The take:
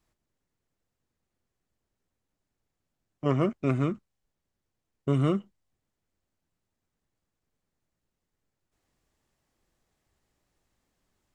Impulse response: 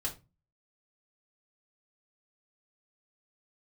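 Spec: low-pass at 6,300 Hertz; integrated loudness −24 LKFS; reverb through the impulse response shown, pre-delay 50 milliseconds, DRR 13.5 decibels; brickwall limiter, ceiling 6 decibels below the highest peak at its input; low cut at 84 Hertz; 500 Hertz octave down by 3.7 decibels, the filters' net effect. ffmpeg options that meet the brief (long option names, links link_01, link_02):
-filter_complex "[0:a]highpass=84,lowpass=6300,equalizer=frequency=500:width_type=o:gain=-5,alimiter=limit=-20dB:level=0:latency=1,asplit=2[link_01][link_02];[1:a]atrim=start_sample=2205,adelay=50[link_03];[link_02][link_03]afir=irnorm=-1:irlink=0,volume=-15.5dB[link_04];[link_01][link_04]amix=inputs=2:normalize=0,volume=8dB"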